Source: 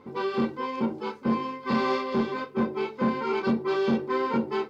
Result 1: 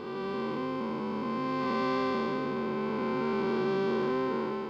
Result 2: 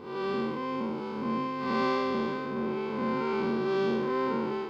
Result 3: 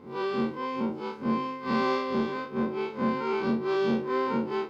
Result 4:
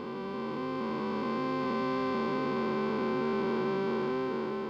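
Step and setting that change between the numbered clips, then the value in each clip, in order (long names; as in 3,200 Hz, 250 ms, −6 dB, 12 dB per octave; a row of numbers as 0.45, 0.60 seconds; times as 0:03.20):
spectrum smeared in time, width: 574, 231, 84, 1,510 milliseconds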